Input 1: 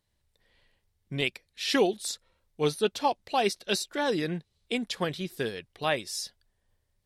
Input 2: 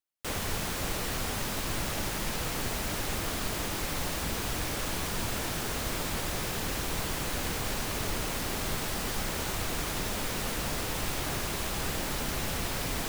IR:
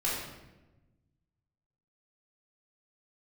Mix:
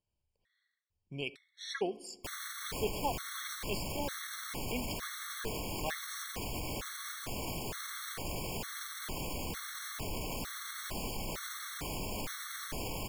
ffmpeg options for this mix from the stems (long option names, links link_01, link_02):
-filter_complex "[0:a]lowpass=9900,volume=-9.5dB,asplit=2[link_01][link_02];[link_02]volume=-24dB[link_03];[1:a]alimiter=level_in=5dB:limit=-24dB:level=0:latency=1,volume=-5dB,adelay=2000,volume=1.5dB[link_04];[2:a]atrim=start_sample=2205[link_05];[link_03][link_05]afir=irnorm=-1:irlink=0[link_06];[link_01][link_04][link_06]amix=inputs=3:normalize=0,afftfilt=real='re*gt(sin(2*PI*1.1*pts/sr)*(1-2*mod(floor(b*sr/1024/1100),2)),0)':imag='im*gt(sin(2*PI*1.1*pts/sr)*(1-2*mod(floor(b*sr/1024/1100),2)),0)':win_size=1024:overlap=0.75"